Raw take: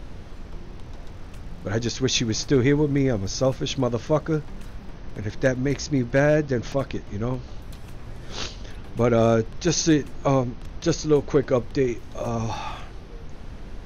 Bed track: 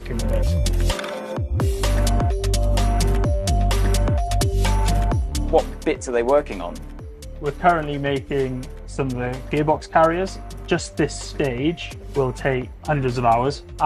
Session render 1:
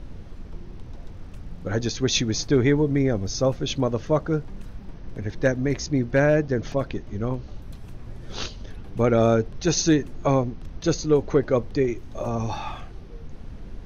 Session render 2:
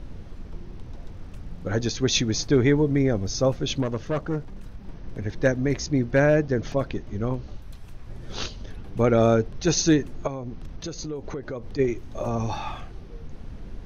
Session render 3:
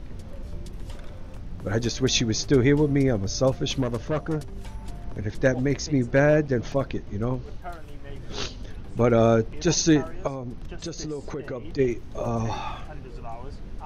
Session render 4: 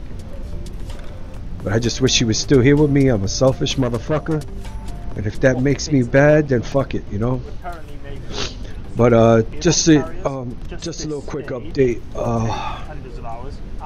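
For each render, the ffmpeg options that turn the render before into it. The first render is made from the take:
ffmpeg -i in.wav -af "afftdn=noise_reduction=6:noise_floor=-40" out.wav
ffmpeg -i in.wav -filter_complex "[0:a]asettb=1/sr,asplit=3[link_01][link_02][link_03];[link_01]atrim=end=3.824[link_04];[link_02]atrim=start=3.82:end=4.85,asetpts=PTS-STARTPTS,afade=type=in:duration=0.004:curve=qsin,afade=type=out:start_time=1.026:duration=0.004:curve=qsin,aeval=exprs='(tanh(10*val(0)+0.45)-tanh(0.45))/10':channel_layout=same[link_05];[link_03]atrim=start=4.846[link_06];[link_04][link_05]acrossfade=duration=0.004:curve1=hsin:curve2=qsin[link_07];[link_07][link_06]acrossfade=duration=0.004:curve1=qsin:curve2=hsin,asettb=1/sr,asplit=3[link_08][link_09][link_10];[link_08]atrim=end=7.564[link_11];[link_09]atrim=start=7.56:end=8.1,asetpts=PTS-STARTPTS,afade=type=in:duration=0.004:curve=qsin,afade=type=out:start_time=0.536:duration=0.004:curve=qsin,equalizer=frequency=220:width=0.37:gain=-6.5[link_12];[link_10]atrim=start=8.096[link_13];[link_11][link_12]acrossfade=duration=0.004:curve1=hsin:curve2=qsin[link_14];[link_14][link_13]acrossfade=duration=0.004:curve1=qsin:curve2=hsin,asplit=3[link_15][link_16][link_17];[link_15]afade=type=out:start_time=10.26:duration=0.02[link_18];[link_16]acompressor=threshold=-29dB:ratio=8:attack=3.2:release=140:knee=1:detection=peak,afade=type=in:start_time=10.26:duration=0.02,afade=type=out:start_time=11.78:duration=0.02[link_19];[link_17]afade=type=in:start_time=11.78:duration=0.02[link_20];[link_18][link_19][link_20]amix=inputs=3:normalize=0" out.wav
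ffmpeg -i in.wav -i bed.wav -filter_complex "[1:a]volume=-22.5dB[link_01];[0:a][link_01]amix=inputs=2:normalize=0" out.wav
ffmpeg -i in.wav -af "volume=7dB,alimiter=limit=-3dB:level=0:latency=1" out.wav

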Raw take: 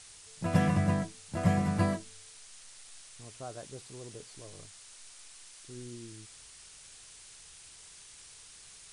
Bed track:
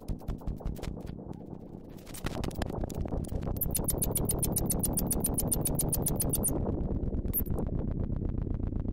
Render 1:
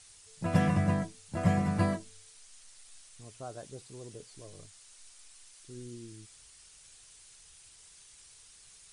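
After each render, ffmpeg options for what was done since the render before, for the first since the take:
ffmpeg -i in.wav -af "afftdn=noise_reduction=6:noise_floor=-53" out.wav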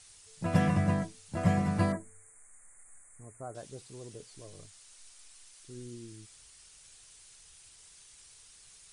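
ffmpeg -i in.wav -filter_complex "[0:a]asettb=1/sr,asplit=3[link_01][link_02][link_03];[link_01]atrim=end=1.924[link_04];[link_02]atrim=start=1.92:end=3.55,asetpts=PTS-STARTPTS,afade=type=in:duration=0.004:curve=qsin,afade=type=out:start_time=1.626:duration=0.004:curve=qsin,asuperstop=centerf=4000:order=12:qfactor=0.82[link_05];[link_03]atrim=start=3.546[link_06];[link_04][link_05]acrossfade=duration=0.004:curve1=hsin:curve2=qsin[link_07];[link_07][link_06]acrossfade=duration=0.004:curve1=qsin:curve2=hsin" out.wav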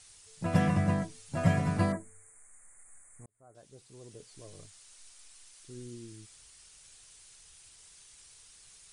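ffmpeg -i in.wav -filter_complex "[0:a]asettb=1/sr,asplit=3[link_01][link_02][link_03];[link_01]atrim=end=1.094[link_04];[link_02]atrim=start=1.09:end=1.77,asetpts=PTS-STARTPTS,afade=type=in:duration=0.004:curve=qsin,afade=type=out:start_time=0.676:duration=0.004:curve=qsin,aecho=1:1:7.3:0.71,atrim=end_sample=29988[link_05];[link_03]atrim=start=1.766[link_06];[link_04][link_05]acrossfade=duration=0.004:curve1=hsin:curve2=qsin[link_07];[link_07][link_06]acrossfade=duration=0.004:curve1=qsin:curve2=hsin,asplit=2[link_08][link_09];[link_08]atrim=end=3.26,asetpts=PTS-STARTPTS,afade=type=out:start_time=3.256:duration=0.004:curve=hsin[link_10];[link_09]atrim=start=3.26,asetpts=PTS-STARTPTS,afade=type=in:duration=1.26[link_11];[link_10][link_11]concat=n=2:v=0:a=1" out.wav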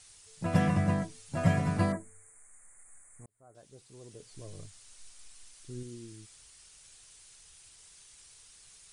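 ffmpeg -i in.wav -filter_complex "[0:a]asettb=1/sr,asplit=3[link_01][link_02][link_03];[link_01]atrim=end=4.254[link_04];[link_02]atrim=start=4.25:end=5.83,asetpts=PTS-STARTPTS,afade=type=in:duration=0.004:curve=qsin,afade=type=out:start_time=1.576:duration=0.004:curve=qsin,lowshelf=frequency=240:gain=8[link_05];[link_03]atrim=start=5.826[link_06];[link_04][link_05]acrossfade=duration=0.004:curve1=hsin:curve2=qsin[link_07];[link_07][link_06]acrossfade=duration=0.004:curve1=qsin:curve2=hsin" out.wav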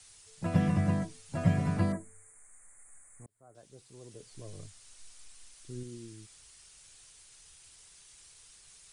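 ffmpeg -i in.wav -filter_complex "[0:a]acrossover=split=220|3500[link_01][link_02][link_03];[link_03]alimiter=level_in=23dB:limit=-24dB:level=0:latency=1,volume=-23dB[link_04];[link_01][link_02][link_04]amix=inputs=3:normalize=0,acrossover=split=450|3000[link_05][link_06][link_07];[link_06]acompressor=threshold=-38dB:ratio=6[link_08];[link_05][link_08][link_07]amix=inputs=3:normalize=0" out.wav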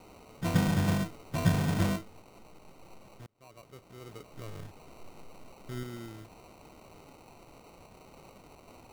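ffmpeg -i in.wav -filter_complex "[0:a]asplit=2[link_01][link_02];[link_02]aeval=exprs='(mod(20*val(0)+1,2)-1)/20':channel_layout=same,volume=-8dB[link_03];[link_01][link_03]amix=inputs=2:normalize=0,acrusher=samples=26:mix=1:aa=0.000001" out.wav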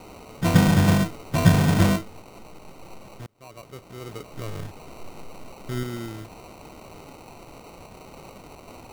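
ffmpeg -i in.wav -af "volume=9.5dB" out.wav

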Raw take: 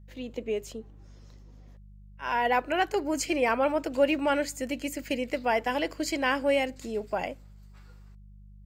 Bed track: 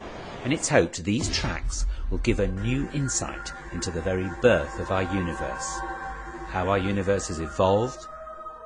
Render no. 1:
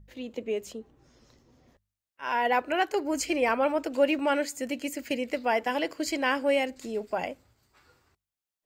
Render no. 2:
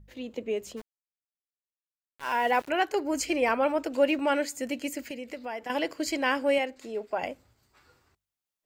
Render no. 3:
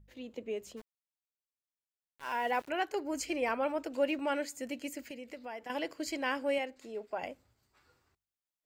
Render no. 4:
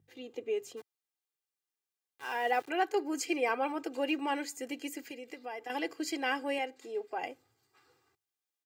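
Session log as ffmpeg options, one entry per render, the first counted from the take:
ffmpeg -i in.wav -af "bandreject=frequency=50:width_type=h:width=4,bandreject=frequency=100:width_type=h:width=4,bandreject=frequency=150:width_type=h:width=4,bandreject=frequency=200:width_type=h:width=4" out.wav
ffmpeg -i in.wav -filter_complex "[0:a]asplit=3[link_01][link_02][link_03];[link_01]afade=type=out:start_time=0.76:duration=0.02[link_04];[link_02]aeval=exprs='val(0)*gte(abs(val(0)),0.00944)':channel_layout=same,afade=type=in:start_time=0.76:duration=0.02,afade=type=out:start_time=2.68:duration=0.02[link_05];[link_03]afade=type=in:start_time=2.68:duration=0.02[link_06];[link_04][link_05][link_06]amix=inputs=3:normalize=0,asettb=1/sr,asplit=3[link_07][link_08][link_09];[link_07]atrim=end=5.084[link_10];[link_08]atrim=start=5.08:end=5.7,asetpts=PTS-STARTPTS,afade=type=in:duration=0.004:curve=qsin,afade=type=out:start_time=0.616:duration=0.004:curve=qsin,acompressor=threshold=-40dB:ratio=2:attack=3.2:release=140:knee=1:detection=peak[link_11];[link_09]atrim=start=5.696[link_12];[link_10][link_11]acrossfade=duration=0.004:curve1=hsin:curve2=qsin[link_13];[link_13][link_12]acrossfade=duration=0.004:curve1=qsin:curve2=hsin,asettb=1/sr,asplit=3[link_14][link_15][link_16];[link_14]atrim=end=6.584[link_17];[link_15]atrim=start=6.58:end=7.23,asetpts=PTS-STARTPTS,afade=type=in:duration=0.004:curve=qsin,afade=type=out:start_time=0.646:duration=0.004:curve=qsin,bass=frequency=250:gain=-10,treble=frequency=4000:gain=-7[link_18];[link_16]atrim=start=7.226[link_19];[link_17][link_18]acrossfade=duration=0.004:curve1=hsin:curve2=qsin[link_20];[link_20][link_19]acrossfade=duration=0.004:curve1=qsin:curve2=hsin" out.wav
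ffmpeg -i in.wav -af "volume=-7dB" out.wav
ffmpeg -i in.wav -af "highpass=frequency=120:width=0.5412,highpass=frequency=120:width=1.3066,aecho=1:1:2.5:0.74" out.wav

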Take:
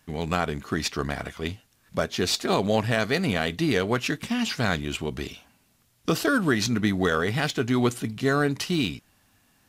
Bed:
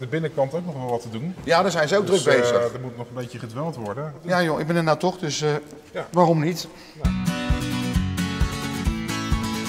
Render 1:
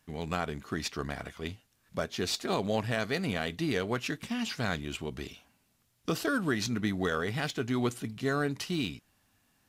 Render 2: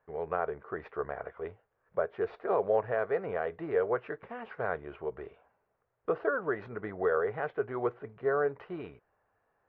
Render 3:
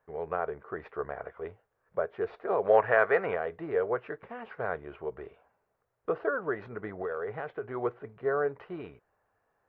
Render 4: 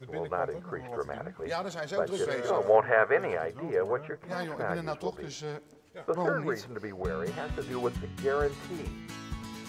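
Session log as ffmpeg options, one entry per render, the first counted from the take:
ffmpeg -i in.wav -af "volume=-7dB" out.wav
ffmpeg -i in.wav -af "lowpass=frequency=1600:width=0.5412,lowpass=frequency=1600:width=1.3066,lowshelf=frequency=340:width_type=q:width=3:gain=-9.5" out.wav
ffmpeg -i in.wav -filter_complex "[0:a]asplit=3[link_01][link_02][link_03];[link_01]afade=type=out:start_time=2.64:duration=0.02[link_04];[link_02]equalizer=frequency=1800:width=0.39:gain=12.5,afade=type=in:start_time=2.64:duration=0.02,afade=type=out:start_time=3.34:duration=0.02[link_05];[link_03]afade=type=in:start_time=3.34:duration=0.02[link_06];[link_04][link_05][link_06]amix=inputs=3:normalize=0,asettb=1/sr,asplit=3[link_07][link_08][link_09];[link_07]atrim=end=6.914[link_10];[link_08]atrim=start=6.91:end=7.67,asetpts=PTS-STARTPTS,afade=type=in:duration=0.004:curve=qsin,afade=type=out:start_time=0.756:duration=0.004:curve=qsin,acompressor=threshold=-30dB:ratio=6:attack=3.2:release=140:knee=1:detection=peak[link_11];[link_09]atrim=start=7.666[link_12];[link_10][link_11]acrossfade=duration=0.004:curve1=hsin:curve2=qsin[link_13];[link_13][link_12]acrossfade=duration=0.004:curve1=qsin:curve2=hsin" out.wav
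ffmpeg -i in.wav -i bed.wav -filter_complex "[1:a]volume=-15.5dB[link_01];[0:a][link_01]amix=inputs=2:normalize=0" out.wav

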